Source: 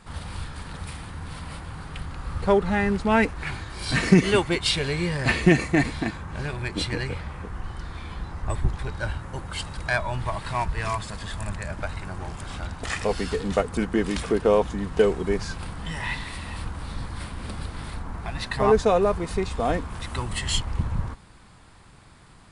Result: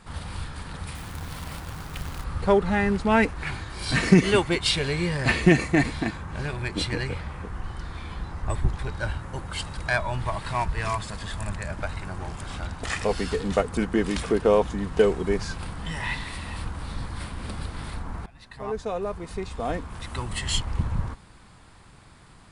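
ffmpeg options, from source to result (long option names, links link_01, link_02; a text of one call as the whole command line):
ffmpeg -i in.wav -filter_complex "[0:a]asettb=1/sr,asplit=3[link_01][link_02][link_03];[link_01]atrim=end=0.954[link_04];[link_02]atrim=start=0.95:end=2.24,asetpts=PTS-STARTPTS,afade=type=in:duration=0.004:curve=qsin,afade=type=out:start_time=1.286:duration=0.004:curve=qsin,acrusher=bits=2:mode=log:mix=0:aa=0.000001[link_05];[link_03]atrim=start=2.236[link_06];[link_04][link_05]acrossfade=duration=0.004:curve1=hsin:curve2=qsin[link_07];[link_07][link_06]acrossfade=duration=0.004:curve1=qsin:curve2=hsin,asplit=2[link_08][link_09];[link_08]atrim=end=18.26,asetpts=PTS-STARTPTS,afade=type=out:start_time=18.256:duration=0.004:curve=hsin:silence=0.0749894[link_10];[link_09]atrim=start=18.26,asetpts=PTS-STARTPTS,afade=type=in:duration=2.51:silence=0.0749894[link_11];[link_10][link_11]concat=n=2:v=0:a=1" out.wav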